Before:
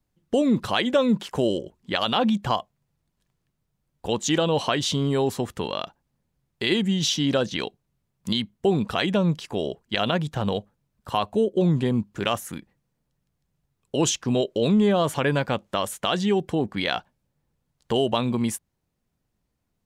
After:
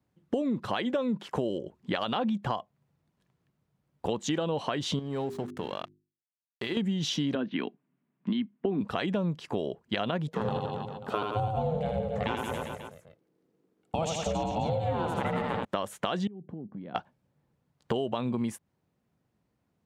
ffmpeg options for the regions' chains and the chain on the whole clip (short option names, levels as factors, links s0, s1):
-filter_complex "[0:a]asettb=1/sr,asplit=3[s0][s1][s2];[s0]atrim=end=4.994[s3];[s1]atrim=start=4.99:end=6.77,asetpts=PTS-STARTPTS,afade=t=in:d=0.004:c=qsin,afade=t=out:st=1.776:d=0.004:c=qsin,aeval=exprs='sgn(val(0))*max(abs(val(0))-0.0106,0)':c=same,bandreject=f=50:t=h:w=6,bandreject=f=100:t=h:w=6,bandreject=f=150:t=h:w=6,bandreject=f=200:t=h:w=6,bandreject=f=250:t=h:w=6,bandreject=f=300:t=h:w=6,bandreject=f=350:t=h:w=6,bandreject=f=400:t=h:w=6,acompressor=threshold=0.0126:ratio=2:attack=3.2:release=140:knee=1:detection=peak[s4];[s2]atrim=start=6.766[s5];[s3][s4]acrossfade=d=0.004:c1=hsin:c2=qsin[s6];[s6][s5]acrossfade=d=0.004:c1=qsin:c2=hsin,asettb=1/sr,asplit=3[s7][s8][s9];[s7]atrim=end=7.354[s10];[s8]atrim=start=7.35:end=8.81,asetpts=PTS-STARTPTS,afade=t=in:d=0.004:c=qsin,afade=t=out:st=1.456:d=0.004:c=qsin,highpass=f=170:w=0.5412,highpass=f=170:w=1.3066,equalizer=f=260:t=q:w=4:g=8,equalizer=f=510:t=q:w=4:g=-9,equalizer=f=810:t=q:w=4:g=-5,lowpass=f=2900:w=0.5412,lowpass=f=2900:w=1.3066,bandreject=f=1300:w=19[s11];[s9]atrim=start=8.806[s12];[s10][s11]acrossfade=d=0.004:c1=hsin:c2=qsin[s13];[s13][s12]acrossfade=d=0.004:c1=qsin:c2=hsin,asettb=1/sr,asplit=3[s14][s15][s16];[s14]atrim=end=10.284[s17];[s15]atrim=start=10.28:end=15.65,asetpts=PTS-STARTPTS,afade=t=in:d=0.004:c=qsin,afade=t=out:st=5.366:d=0.004:c=qsin,aeval=exprs='val(0)*sin(2*PI*320*n/s)':c=same,aecho=1:1:80|172|277.8|399.5|539.4:0.631|0.398|0.251|0.158|0.1,atrim=end_sample=236817[s18];[s16]atrim=start=15.646[s19];[s17][s18]acrossfade=d=0.004:c1=hsin:c2=qsin[s20];[s20][s19]acrossfade=d=0.004:c1=qsin:c2=hsin,asettb=1/sr,asplit=3[s21][s22][s23];[s21]atrim=end=16.274[s24];[s22]atrim=start=16.27:end=16.95,asetpts=PTS-STARTPTS,afade=t=in:d=0.004:c=qsin,afade=t=out:st=0.676:d=0.004:c=qsin,bandpass=f=190:t=q:w=1.6,acompressor=threshold=0.00891:ratio=6:attack=3.2:release=140:knee=1:detection=peak[s25];[s23]atrim=start=16.946[s26];[s24][s25]acrossfade=d=0.004:c1=hsin:c2=qsin[s27];[s27][s26]acrossfade=d=0.004:c1=qsin:c2=hsin,highpass=100,highshelf=f=3500:g=-12,acompressor=threshold=0.0282:ratio=6,volume=1.58"